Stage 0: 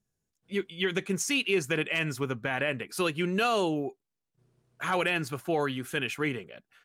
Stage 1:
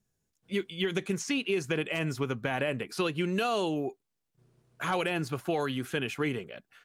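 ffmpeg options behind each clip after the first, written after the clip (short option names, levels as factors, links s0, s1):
-filter_complex "[0:a]acrossover=split=1200|2600|5400[s0][s1][s2][s3];[s0]acompressor=threshold=0.0316:ratio=4[s4];[s1]acompressor=threshold=0.00501:ratio=4[s5];[s2]acompressor=threshold=0.00891:ratio=4[s6];[s3]acompressor=threshold=0.002:ratio=4[s7];[s4][s5][s6][s7]amix=inputs=4:normalize=0,volume=1.41"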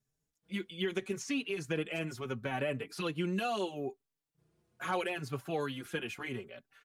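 -filter_complex "[0:a]asplit=2[s0][s1];[s1]adelay=4.7,afreqshift=0.75[s2];[s0][s2]amix=inputs=2:normalize=1,volume=0.75"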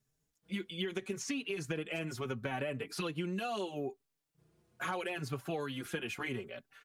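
-af "acompressor=threshold=0.0141:ratio=6,volume=1.5"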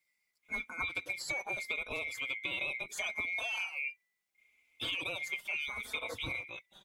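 -af "afftfilt=real='real(if(lt(b,920),b+92*(1-2*mod(floor(b/92),2)),b),0)':imag='imag(if(lt(b,920),b+92*(1-2*mod(floor(b/92),2)),b),0)':win_size=2048:overlap=0.75"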